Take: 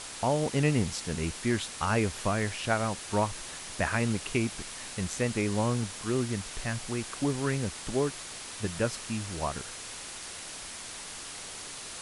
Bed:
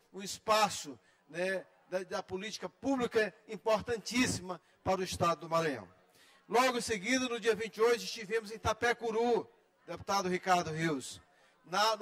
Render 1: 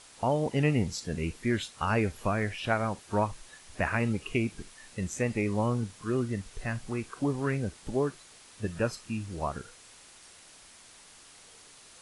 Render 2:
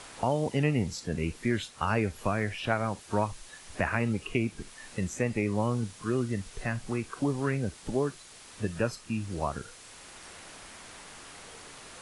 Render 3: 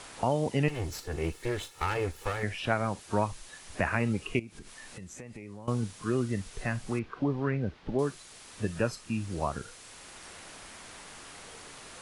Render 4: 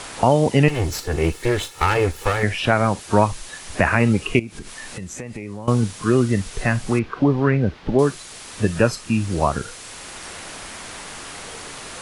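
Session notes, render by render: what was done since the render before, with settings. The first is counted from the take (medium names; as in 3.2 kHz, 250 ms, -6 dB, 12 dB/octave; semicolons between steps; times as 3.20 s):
noise print and reduce 12 dB
three bands compressed up and down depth 40%
0.68–2.43 s: comb filter that takes the minimum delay 2.3 ms; 4.39–5.68 s: compression 5:1, threshold -42 dBFS; 6.99–7.99 s: distance through air 280 m
trim +12 dB; peak limiter -2 dBFS, peak gain reduction 3 dB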